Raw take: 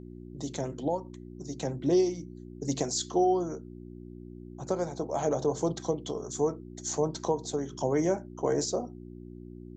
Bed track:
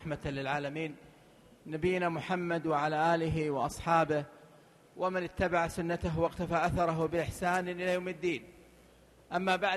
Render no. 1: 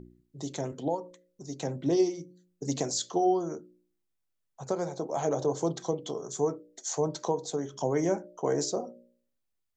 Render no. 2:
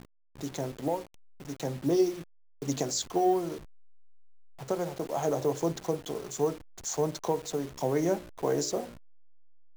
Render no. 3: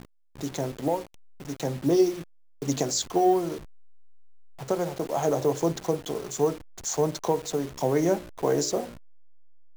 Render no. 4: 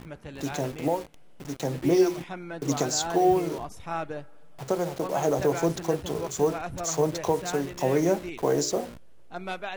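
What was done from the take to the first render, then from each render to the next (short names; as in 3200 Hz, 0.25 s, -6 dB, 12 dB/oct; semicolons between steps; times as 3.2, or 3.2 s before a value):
de-hum 60 Hz, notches 10
level-crossing sampler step -41 dBFS
gain +4 dB
add bed track -5 dB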